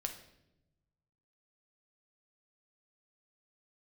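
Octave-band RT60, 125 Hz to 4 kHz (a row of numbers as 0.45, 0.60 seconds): 1.8, 1.4, 1.1, 0.70, 0.70, 0.70 seconds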